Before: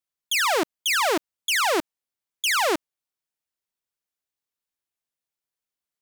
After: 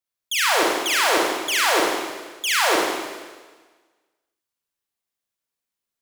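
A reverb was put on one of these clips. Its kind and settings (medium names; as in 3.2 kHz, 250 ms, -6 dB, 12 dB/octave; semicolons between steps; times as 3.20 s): Schroeder reverb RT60 1.4 s, combs from 33 ms, DRR -3.5 dB; trim -1.5 dB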